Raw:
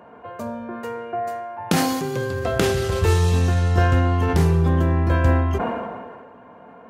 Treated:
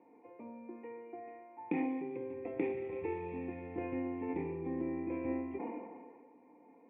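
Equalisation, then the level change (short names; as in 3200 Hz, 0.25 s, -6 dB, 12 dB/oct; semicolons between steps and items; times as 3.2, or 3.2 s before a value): vocal tract filter e; vowel filter u; HPF 68 Hz; +13.0 dB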